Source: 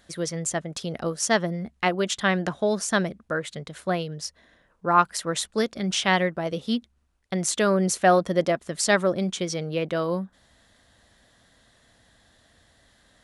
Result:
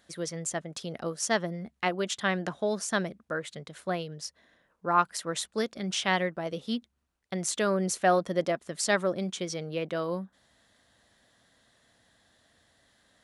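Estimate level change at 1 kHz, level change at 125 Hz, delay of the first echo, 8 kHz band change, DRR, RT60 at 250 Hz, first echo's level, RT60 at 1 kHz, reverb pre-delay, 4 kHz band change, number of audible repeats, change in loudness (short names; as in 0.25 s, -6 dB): -5.0 dB, -6.5 dB, none, -5.0 dB, none, none, none, none, none, -5.0 dB, none, -5.5 dB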